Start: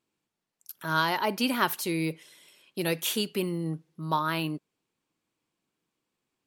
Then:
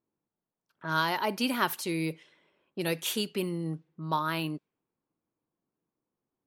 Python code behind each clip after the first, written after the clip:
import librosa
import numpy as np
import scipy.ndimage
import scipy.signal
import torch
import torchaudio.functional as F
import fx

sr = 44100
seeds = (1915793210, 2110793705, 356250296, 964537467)

y = fx.env_lowpass(x, sr, base_hz=1000.0, full_db=-25.5)
y = F.gain(torch.from_numpy(y), -2.0).numpy()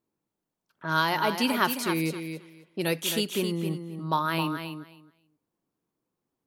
y = fx.echo_feedback(x, sr, ms=266, feedback_pct=16, wet_db=-8)
y = F.gain(torch.from_numpy(y), 3.0).numpy()